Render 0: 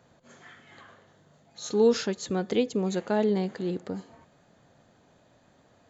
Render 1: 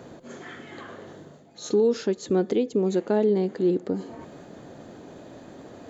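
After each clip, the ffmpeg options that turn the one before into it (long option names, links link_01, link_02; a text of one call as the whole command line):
ffmpeg -i in.wav -af "equalizer=frequency=340:width=1:gain=11.5,alimiter=limit=-13.5dB:level=0:latency=1:release=419,areverse,acompressor=mode=upward:threshold=-32dB:ratio=2.5,areverse" out.wav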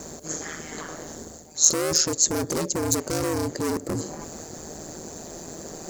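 ffmpeg -i in.wav -af "asoftclip=type=hard:threshold=-28.5dB,aexciter=amount=11.9:drive=4.2:freq=5000,aeval=exprs='val(0)*sin(2*PI*79*n/s)':channel_layout=same,volume=7dB" out.wav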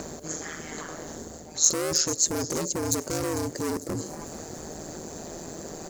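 ffmpeg -i in.wav -filter_complex "[0:a]acrossover=split=4100[link_01][link_02];[link_01]acompressor=mode=upward:threshold=-29dB:ratio=2.5[link_03];[link_02]aecho=1:1:449|898|1347|1796|2245:0.237|0.114|0.0546|0.0262|0.0126[link_04];[link_03][link_04]amix=inputs=2:normalize=0,volume=-3dB" out.wav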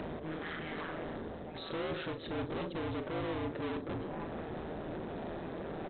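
ffmpeg -i in.wav -filter_complex "[0:a]aresample=8000,asoftclip=type=tanh:threshold=-37.5dB,aresample=44100,asplit=2[link_01][link_02];[link_02]adelay=38,volume=-10dB[link_03];[link_01][link_03]amix=inputs=2:normalize=0,volume=2dB" out.wav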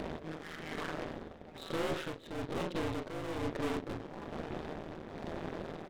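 ffmpeg -i in.wav -af "aeval=exprs='if(lt(val(0),0),0.251*val(0),val(0))':channel_layout=same,aeval=exprs='0.0282*(cos(1*acos(clip(val(0)/0.0282,-1,1)))-cos(1*PI/2))+0.00355*(cos(8*acos(clip(val(0)/0.0282,-1,1)))-cos(8*PI/2))':channel_layout=same,tremolo=f=1.1:d=0.55,volume=6.5dB" out.wav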